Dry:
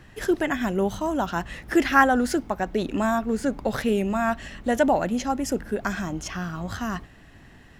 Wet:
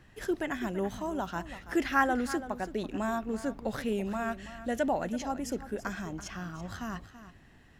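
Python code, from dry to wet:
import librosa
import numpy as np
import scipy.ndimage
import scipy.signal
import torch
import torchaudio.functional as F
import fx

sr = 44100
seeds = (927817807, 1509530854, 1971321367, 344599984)

p1 = fx.peak_eq(x, sr, hz=950.0, db=-7.0, octaves=0.45, at=(4.23, 4.87))
p2 = p1 + fx.echo_single(p1, sr, ms=332, db=-13.5, dry=0)
y = p2 * 10.0 ** (-8.5 / 20.0)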